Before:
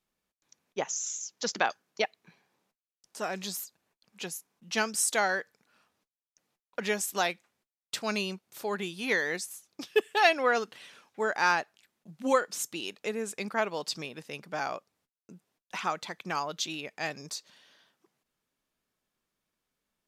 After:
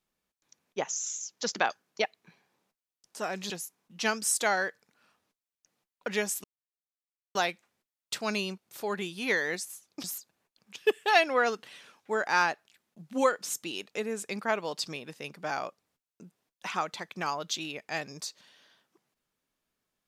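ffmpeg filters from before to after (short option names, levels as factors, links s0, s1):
-filter_complex "[0:a]asplit=5[s0][s1][s2][s3][s4];[s0]atrim=end=3.502[s5];[s1]atrim=start=4.218:end=7.16,asetpts=PTS-STARTPTS,afade=t=out:st=2.938:d=0.004:c=hsin,apad=pad_dur=0.91[s6];[s2]atrim=start=7.16:end=9.852,asetpts=PTS-STARTPTS,afade=t=in:d=0.004:c=hsin[s7];[s3]atrim=start=3.498:end=4.222[s8];[s4]atrim=start=9.848[s9];[s6][s7]concat=n=2:v=0:a=1[s10];[s5][s10]acrossfade=d=0.004:c1=hsin:c2=hsin[s11];[s11][s8]acrossfade=d=0.004:c1=hsin:c2=hsin[s12];[s12][s9]acrossfade=d=0.004:c1=hsin:c2=hsin"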